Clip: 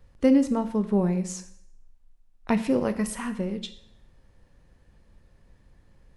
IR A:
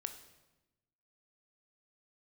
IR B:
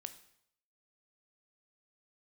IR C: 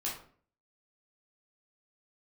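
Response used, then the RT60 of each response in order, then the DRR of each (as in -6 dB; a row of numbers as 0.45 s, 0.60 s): B; 1.0 s, 0.70 s, 0.50 s; 7.5 dB, 9.5 dB, -5.0 dB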